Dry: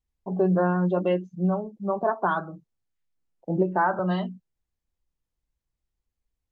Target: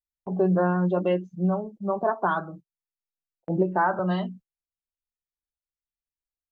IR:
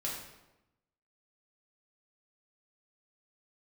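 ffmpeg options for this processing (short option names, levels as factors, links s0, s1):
-af "agate=range=0.0891:threshold=0.00631:ratio=16:detection=peak"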